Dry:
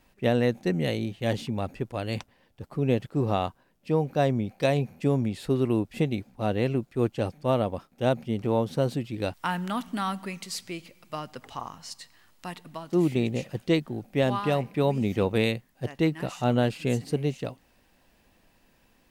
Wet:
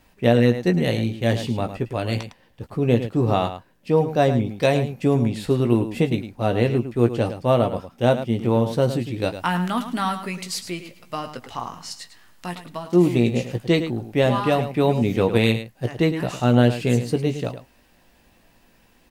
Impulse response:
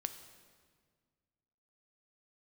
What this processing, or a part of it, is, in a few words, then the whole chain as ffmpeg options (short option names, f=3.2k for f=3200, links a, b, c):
slapback doubling: -filter_complex "[0:a]asplit=3[a][b][c];[b]adelay=17,volume=-8dB[d];[c]adelay=107,volume=-10.5dB[e];[a][d][e]amix=inputs=3:normalize=0,volume=5dB"